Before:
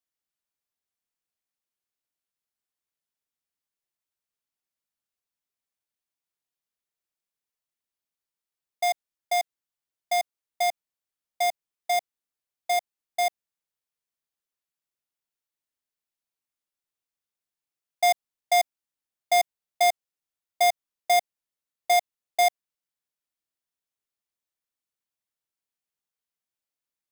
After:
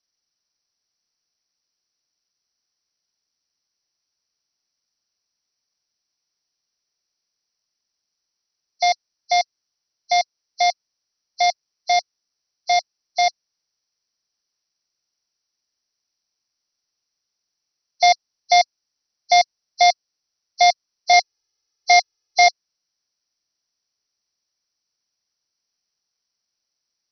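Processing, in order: nonlinear frequency compression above 3900 Hz 4:1; 21.13–22.47 comb 2.4 ms, depth 80%; gain +6.5 dB

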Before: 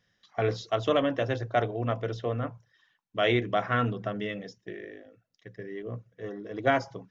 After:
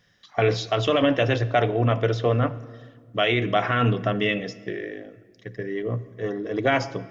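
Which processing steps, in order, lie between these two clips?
dynamic EQ 2700 Hz, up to +7 dB, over -49 dBFS, Q 2; limiter -20 dBFS, peak gain reduction 10 dB; shoebox room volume 2200 m³, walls mixed, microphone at 0.36 m; gain +9 dB

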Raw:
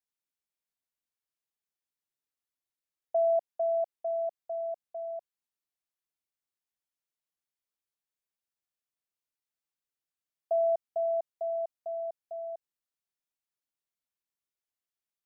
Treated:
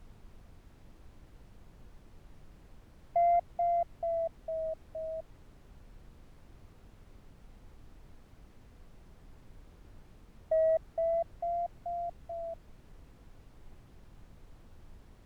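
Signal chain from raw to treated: vibrato 0.36 Hz 71 cents; added noise brown -50 dBFS; added harmonics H 3 -27 dB, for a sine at -20 dBFS

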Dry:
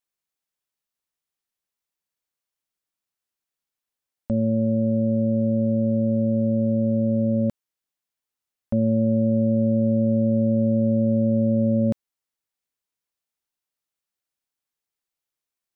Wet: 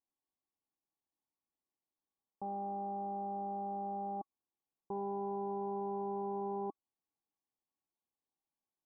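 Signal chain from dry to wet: wrapped overs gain 28 dB; rippled Chebyshev low-pass 650 Hz, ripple 9 dB; wide varispeed 1.78×; gain +5.5 dB

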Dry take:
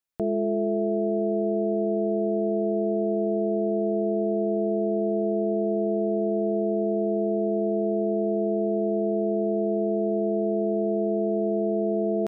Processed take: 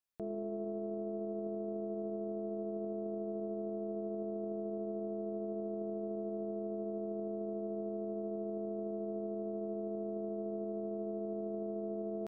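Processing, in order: tracing distortion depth 0.083 ms; limiter -27 dBFS, peak gain reduction 11 dB; gain -5 dB

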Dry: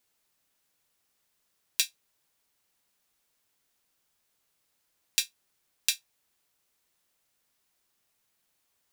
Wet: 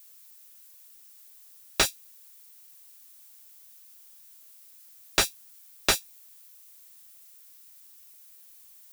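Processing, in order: RIAA curve recording; slew limiter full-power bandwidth 280 Hz; gain +7 dB

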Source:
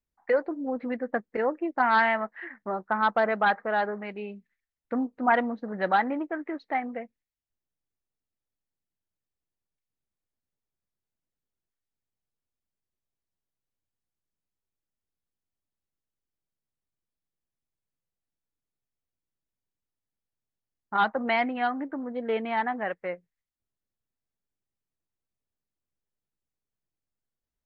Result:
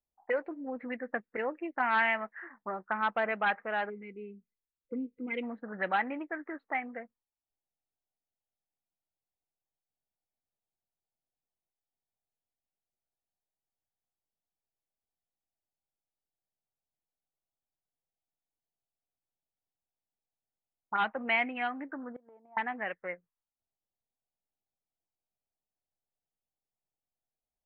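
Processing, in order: 3.9–5.43 spectral gain 520–2000 Hz -26 dB; 22.06–22.57 flipped gate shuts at -26 dBFS, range -25 dB; envelope low-pass 760–2600 Hz up, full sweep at -25.5 dBFS; gain -8 dB

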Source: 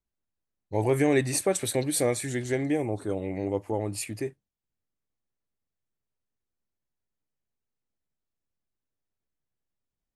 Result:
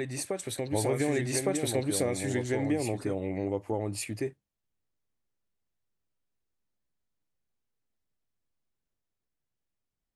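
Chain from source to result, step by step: high shelf 9300 Hz -6 dB; compressor, threshold -25 dBFS, peak gain reduction 7.5 dB; on a send: reverse echo 1.16 s -4 dB

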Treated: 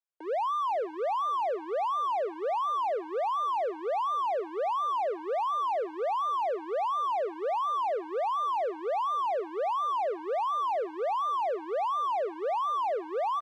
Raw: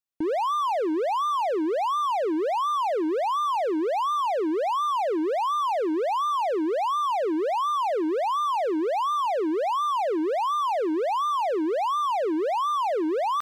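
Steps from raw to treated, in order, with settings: steep high-pass 430 Hz 36 dB/oct; high shelf 3400 Hz -12 dB; on a send: feedback echo 0.493 s, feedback 29%, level -19.5 dB; on the sum: gain -3 dB

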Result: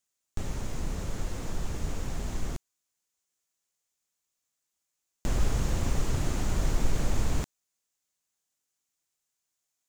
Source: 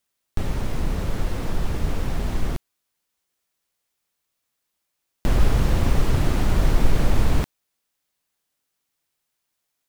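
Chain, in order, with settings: bell 6900 Hz +11 dB 0.62 oct; gain -8.5 dB

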